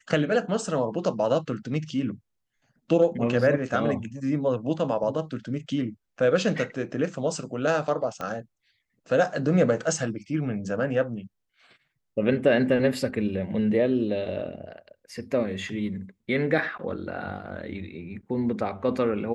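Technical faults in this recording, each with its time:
0:08.21: click −19 dBFS

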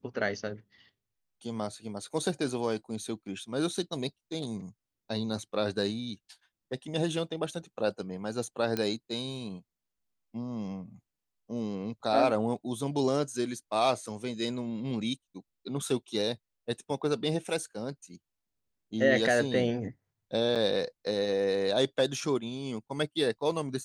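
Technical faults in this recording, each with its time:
0:08.77: click −16 dBFS
0:20.55–0:20.56: drop-out 6.9 ms

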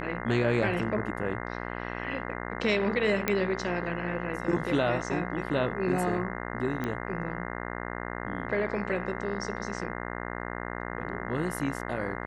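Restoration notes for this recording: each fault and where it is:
mains buzz 60 Hz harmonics 35 −36 dBFS
0:03.28: click −10 dBFS
0:06.84: click −19 dBFS

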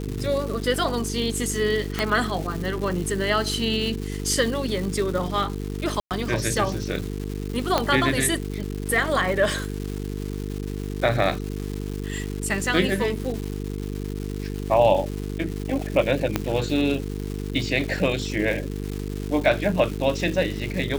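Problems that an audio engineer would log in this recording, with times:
mains buzz 50 Hz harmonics 9 −30 dBFS
surface crackle 460 per second −30 dBFS
0:01.99: click
0:06.00–0:06.11: drop-out 108 ms
0:07.78: click −6 dBFS
0:16.36: click −7 dBFS

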